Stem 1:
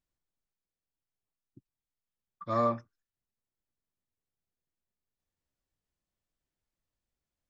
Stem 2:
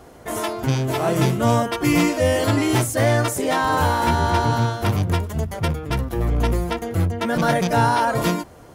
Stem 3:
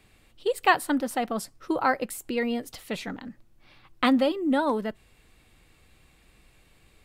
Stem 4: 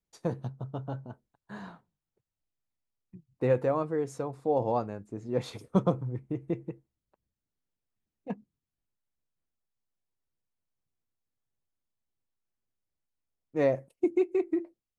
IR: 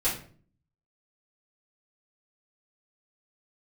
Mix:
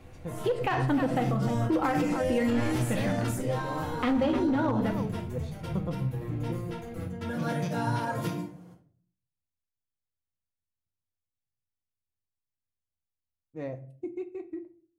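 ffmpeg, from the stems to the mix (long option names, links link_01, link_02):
-filter_complex "[0:a]aeval=exprs='abs(val(0))':channel_layout=same,volume=-2.5dB,asplit=2[link_01][link_02];[link_02]volume=-10dB[link_03];[1:a]highpass=frequency=130:width=0.5412,highpass=frequency=130:width=1.3066,volume=-16.5dB,asplit=2[link_04][link_05];[link_05]volume=-9dB[link_06];[2:a]lowpass=2900,volume=-1.5dB,asplit=3[link_07][link_08][link_09];[link_08]volume=-10dB[link_10];[link_09]volume=-11.5dB[link_11];[3:a]volume=-13.5dB,asplit=3[link_12][link_13][link_14];[link_13]volume=-16.5dB[link_15];[link_14]apad=whole_len=385439[link_16];[link_04][link_16]sidechaincompress=threshold=-51dB:ratio=8:attack=16:release=1490[link_17];[4:a]atrim=start_sample=2205[link_18];[link_06][link_10][link_15]amix=inputs=3:normalize=0[link_19];[link_19][link_18]afir=irnorm=-1:irlink=0[link_20];[link_03][link_11]amix=inputs=2:normalize=0,aecho=0:1:304:1[link_21];[link_01][link_17][link_07][link_12][link_20][link_21]amix=inputs=6:normalize=0,equalizer=frequency=88:width=0.81:gain=14,aeval=exprs='clip(val(0),-1,0.178)':channel_layout=same,alimiter=limit=-18.5dB:level=0:latency=1:release=101"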